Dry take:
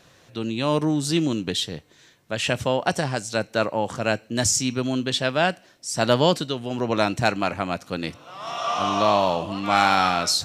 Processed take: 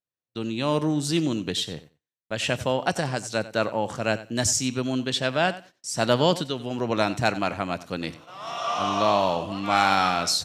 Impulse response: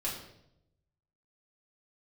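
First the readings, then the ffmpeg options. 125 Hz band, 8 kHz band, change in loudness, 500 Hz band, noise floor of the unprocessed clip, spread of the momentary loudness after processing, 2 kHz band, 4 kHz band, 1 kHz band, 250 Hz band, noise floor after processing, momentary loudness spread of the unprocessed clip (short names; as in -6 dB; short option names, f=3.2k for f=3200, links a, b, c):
-2.0 dB, -2.0 dB, -2.0 dB, -2.0 dB, -55 dBFS, 11 LU, -2.0 dB, -2.0 dB, -2.0 dB, -2.0 dB, under -85 dBFS, 11 LU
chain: -af "agate=range=-43dB:threshold=-44dB:ratio=16:detection=peak,aecho=1:1:92|184:0.15|0.0224,volume=-2dB"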